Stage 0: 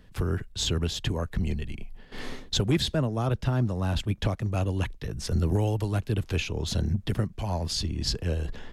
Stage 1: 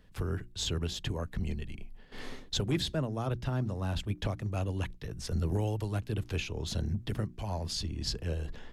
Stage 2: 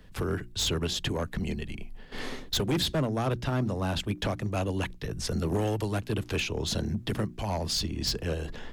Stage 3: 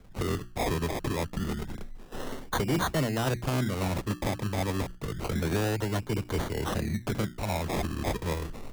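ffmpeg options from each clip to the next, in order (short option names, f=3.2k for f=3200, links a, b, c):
-af "bandreject=f=60:t=h:w=6,bandreject=f=120:t=h:w=6,bandreject=f=180:t=h:w=6,bandreject=f=240:t=h:w=6,bandreject=f=300:t=h:w=6,bandreject=f=360:t=h:w=6,volume=-5.5dB"
-filter_complex "[0:a]acrossover=split=160[a][b];[a]acompressor=threshold=-42dB:ratio=6[c];[b]asoftclip=type=hard:threshold=-31.5dB[d];[c][d]amix=inputs=2:normalize=0,volume=7.5dB"
-af "acrusher=samples=24:mix=1:aa=0.000001:lfo=1:lforange=14.4:lforate=0.28"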